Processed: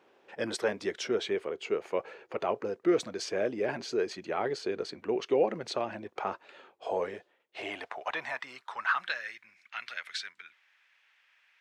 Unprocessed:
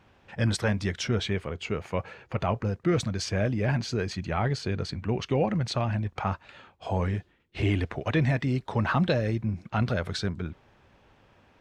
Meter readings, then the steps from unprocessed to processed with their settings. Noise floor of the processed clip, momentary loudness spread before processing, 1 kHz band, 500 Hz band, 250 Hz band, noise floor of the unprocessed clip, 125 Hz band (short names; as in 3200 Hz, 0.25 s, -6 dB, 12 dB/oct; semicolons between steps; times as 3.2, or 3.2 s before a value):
-70 dBFS, 7 LU, -2.5 dB, 0.0 dB, -8.0 dB, -62 dBFS, -25.0 dB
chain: high-pass sweep 390 Hz -> 2000 Hz, 6.74–9.53; gain -4.5 dB